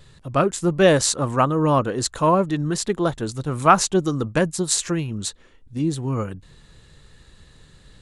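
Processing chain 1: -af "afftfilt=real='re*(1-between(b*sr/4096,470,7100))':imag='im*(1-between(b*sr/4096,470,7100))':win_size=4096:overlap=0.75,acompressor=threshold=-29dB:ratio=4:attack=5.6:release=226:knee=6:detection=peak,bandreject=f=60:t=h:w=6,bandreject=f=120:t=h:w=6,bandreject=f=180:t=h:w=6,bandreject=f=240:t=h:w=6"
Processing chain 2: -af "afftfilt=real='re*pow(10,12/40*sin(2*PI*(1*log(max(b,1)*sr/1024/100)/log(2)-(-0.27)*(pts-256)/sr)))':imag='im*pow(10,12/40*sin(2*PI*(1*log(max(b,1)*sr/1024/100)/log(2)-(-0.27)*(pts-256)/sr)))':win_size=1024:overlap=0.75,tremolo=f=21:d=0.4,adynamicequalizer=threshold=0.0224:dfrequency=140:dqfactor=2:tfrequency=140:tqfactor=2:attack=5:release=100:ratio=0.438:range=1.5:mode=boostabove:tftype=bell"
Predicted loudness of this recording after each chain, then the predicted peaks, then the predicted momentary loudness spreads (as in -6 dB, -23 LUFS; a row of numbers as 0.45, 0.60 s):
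-33.0, -21.5 LUFS; -17.0, -3.0 dBFS; 5, 9 LU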